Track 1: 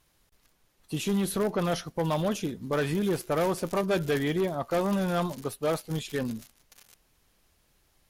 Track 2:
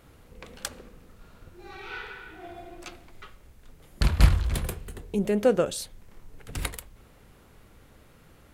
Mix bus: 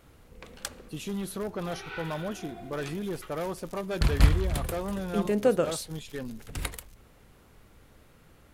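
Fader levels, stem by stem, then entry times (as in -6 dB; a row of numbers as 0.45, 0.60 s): -6.5, -2.0 dB; 0.00, 0.00 s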